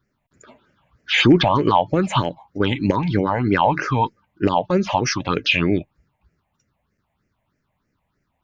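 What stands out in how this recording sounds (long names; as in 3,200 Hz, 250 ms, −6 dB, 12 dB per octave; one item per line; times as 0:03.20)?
phaser sweep stages 6, 3.2 Hz, lowest notch 350–1,000 Hz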